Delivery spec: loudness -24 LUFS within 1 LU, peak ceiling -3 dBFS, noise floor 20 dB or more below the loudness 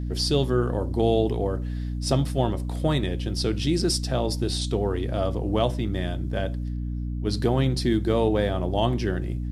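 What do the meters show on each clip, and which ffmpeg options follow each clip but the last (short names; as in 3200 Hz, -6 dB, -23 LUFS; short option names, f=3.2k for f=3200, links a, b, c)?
hum 60 Hz; harmonics up to 300 Hz; hum level -27 dBFS; loudness -25.5 LUFS; peak -8.5 dBFS; loudness target -24.0 LUFS
-> -af "bandreject=f=60:t=h:w=4,bandreject=f=120:t=h:w=4,bandreject=f=180:t=h:w=4,bandreject=f=240:t=h:w=4,bandreject=f=300:t=h:w=4"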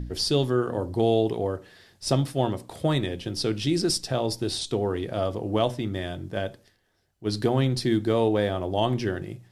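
hum none; loudness -26.5 LUFS; peak -9.0 dBFS; loudness target -24.0 LUFS
-> -af "volume=2.5dB"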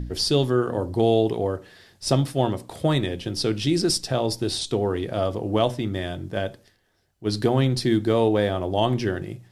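loudness -24.0 LUFS; peak -6.5 dBFS; noise floor -62 dBFS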